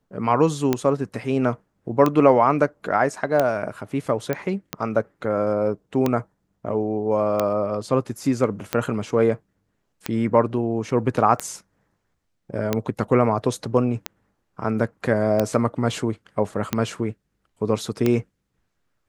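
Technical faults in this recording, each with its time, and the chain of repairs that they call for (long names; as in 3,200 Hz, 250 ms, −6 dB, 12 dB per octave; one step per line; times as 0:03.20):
scratch tick 45 rpm −7 dBFS
0:04.33: click −11 dBFS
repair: click removal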